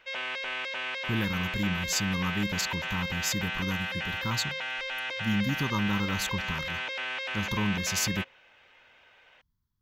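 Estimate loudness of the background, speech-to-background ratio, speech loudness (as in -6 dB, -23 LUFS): -32.5 LUFS, 0.5 dB, -32.0 LUFS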